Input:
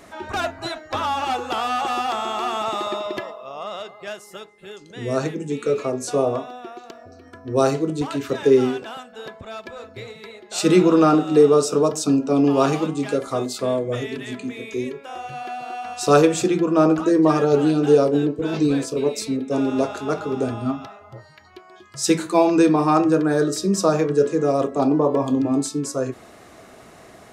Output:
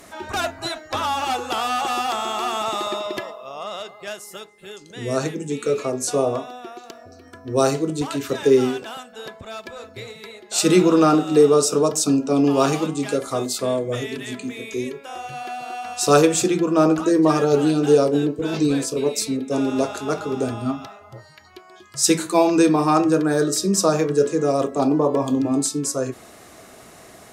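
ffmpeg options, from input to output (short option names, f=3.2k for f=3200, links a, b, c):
-af "aemphasis=mode=production:type=cd"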